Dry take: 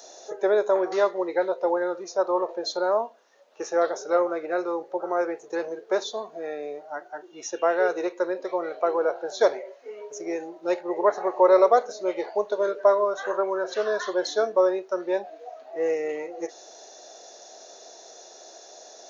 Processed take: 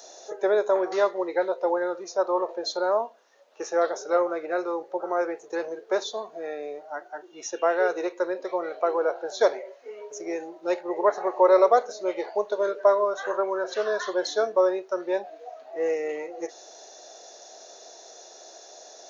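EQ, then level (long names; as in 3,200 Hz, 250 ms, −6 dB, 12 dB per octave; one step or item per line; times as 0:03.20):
high-pass filter 220 Hz 6 dB per octave
0.0 dB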